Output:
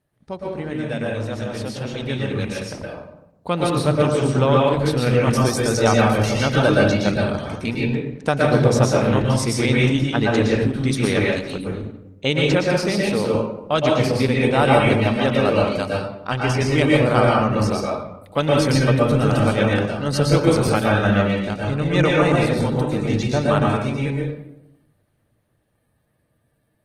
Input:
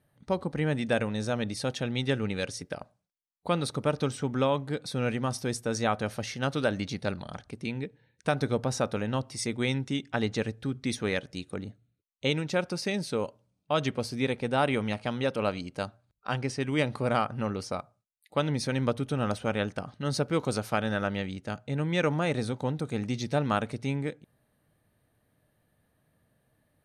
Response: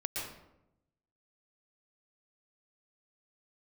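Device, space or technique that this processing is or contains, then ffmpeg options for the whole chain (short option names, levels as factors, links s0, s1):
speakerphone in a meeting room: -filter_complex "[1:a]atrim=start_sample=2205[s0];[0:a][s0]afir=irnorm=-1:irlink=0,dynaudnorm=f=380:g=17:m=5.01,volume=0.891" -ar 48000 -c:a libopus -b:a 16k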